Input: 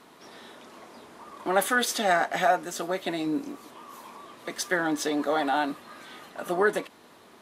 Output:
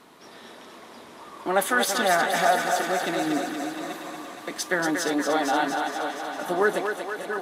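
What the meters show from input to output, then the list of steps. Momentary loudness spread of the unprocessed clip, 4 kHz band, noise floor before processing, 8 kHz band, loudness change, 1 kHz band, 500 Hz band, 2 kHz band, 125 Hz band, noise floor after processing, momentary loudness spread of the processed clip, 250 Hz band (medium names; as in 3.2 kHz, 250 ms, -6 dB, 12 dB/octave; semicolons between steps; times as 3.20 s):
21 LU, +3.5 dB, -54 dBFS, +3.5 dB, +1.5 dB, +3.0 dB, +2.5 dB, +3.5 dB, +2.0 dB, -46 dBFS, 23 LU, +2.0 dB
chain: backward echo that repeats 437 ms, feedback 43%, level -9 dB; thinning echo 235 ms, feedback 71%, high-pass 340 Hz, level -5.5 dB; trim +1 dB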